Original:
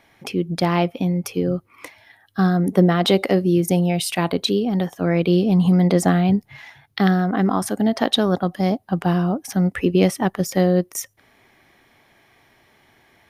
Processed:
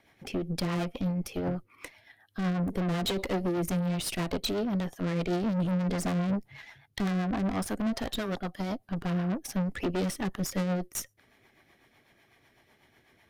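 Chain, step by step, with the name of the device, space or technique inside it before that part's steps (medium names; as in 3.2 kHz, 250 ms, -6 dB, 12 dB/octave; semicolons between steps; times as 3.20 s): 7.99–8.79 s: bass shelf 490 Hz -6.5 dB; overdriven rotary cabinet (valve stage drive 25 dB, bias 0.75; rotary cabinet horn 8 Hz)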